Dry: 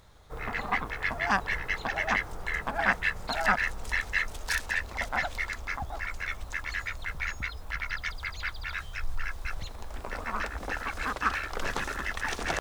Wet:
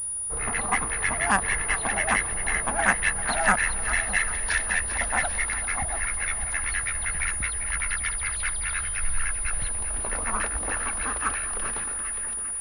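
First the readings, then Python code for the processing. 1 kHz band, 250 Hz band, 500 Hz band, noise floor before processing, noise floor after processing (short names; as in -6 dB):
+3.5 dB, +3.5 dB, +3.0 dB, -43 dBFS, -31 dBFS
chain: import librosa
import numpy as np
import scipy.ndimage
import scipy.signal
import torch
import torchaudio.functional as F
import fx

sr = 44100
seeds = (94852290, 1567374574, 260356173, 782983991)

y = fx.fade_out_tail(x, sr, length_s=2.22)
y = fx.echo_split(y, sr, split_hz=840.0, low_ms=609, high_ms=395, feedback_pct=52, wet_db=-10.5)
y = fx.pwm(y, sr, carrier_hz=9700.0)
y = y * librosa.db_to_amplitude(3.5)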